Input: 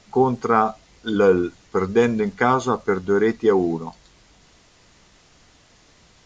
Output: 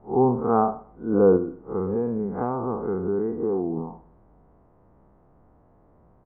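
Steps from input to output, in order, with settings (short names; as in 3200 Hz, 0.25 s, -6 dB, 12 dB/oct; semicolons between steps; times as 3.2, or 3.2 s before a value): time blur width 0.119 s; LPF 1000 Hz 24 dB/oct; 1.36–3.77 compressor, threshold -24 dBFS, peak gain reduction 8.5 dB; feedback echo 0.126 s, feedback 22%, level -20.5 dB; gain +1.5 dB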